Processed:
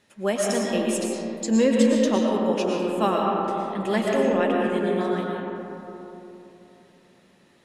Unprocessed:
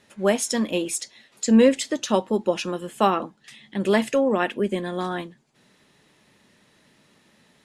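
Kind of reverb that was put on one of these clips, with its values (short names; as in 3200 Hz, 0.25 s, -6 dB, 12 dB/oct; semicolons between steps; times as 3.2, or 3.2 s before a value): digital reverb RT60 3.4 s, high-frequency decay 0.3×, pre-delay 75 ms, DRR -2 dB; gain -4.5 dB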